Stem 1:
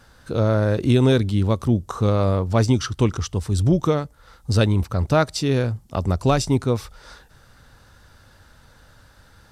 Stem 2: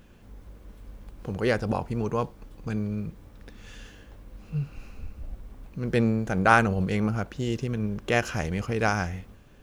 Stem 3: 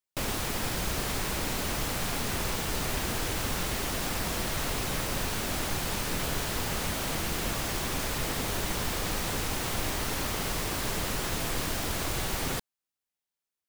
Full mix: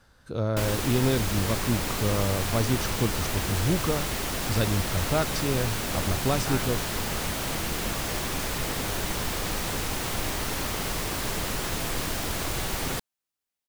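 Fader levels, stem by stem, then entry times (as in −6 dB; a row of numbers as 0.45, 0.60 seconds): −8.0, −18.0, +1.5 decibels; 0.00, 0.00, 0.40 seconds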